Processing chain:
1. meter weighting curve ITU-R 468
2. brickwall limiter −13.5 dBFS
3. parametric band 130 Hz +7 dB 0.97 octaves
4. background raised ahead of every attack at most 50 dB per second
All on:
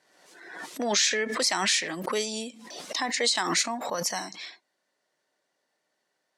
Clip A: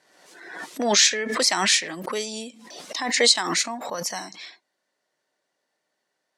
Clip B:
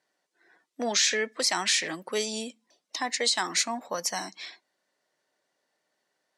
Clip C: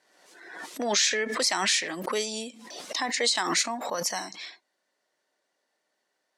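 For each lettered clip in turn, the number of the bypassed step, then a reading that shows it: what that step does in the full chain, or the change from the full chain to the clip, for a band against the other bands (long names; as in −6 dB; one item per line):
2, change in crest factor +6.0 dB
4, change in momentary loudness spread −2 LU
3, 125 Hz band −3.0 dB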